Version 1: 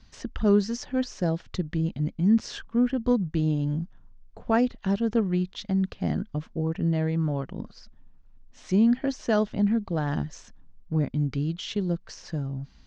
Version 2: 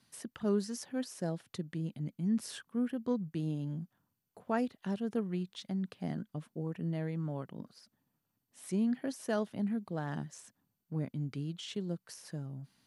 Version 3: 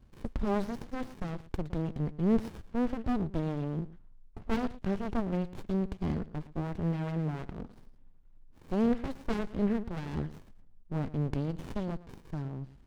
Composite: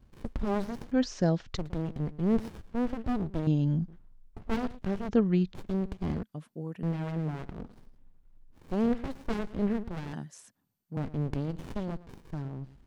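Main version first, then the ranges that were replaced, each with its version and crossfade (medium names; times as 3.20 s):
3
0.92–1.57 s: from 1
3.47–3.88 s: from 1
5.09–5.54 s: from 1
6.23–6.83 s: from 2
10.13–10.97 s: from 2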